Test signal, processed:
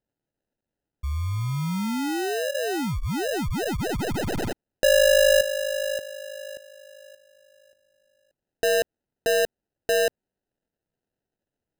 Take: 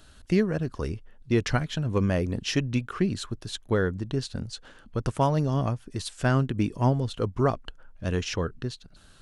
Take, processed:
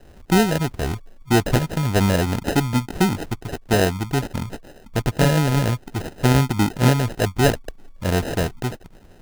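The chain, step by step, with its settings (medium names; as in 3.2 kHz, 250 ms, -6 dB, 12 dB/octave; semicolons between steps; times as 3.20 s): tracing distortion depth 0.021 ms; sample-and-hold 39×; trim +6.5 dB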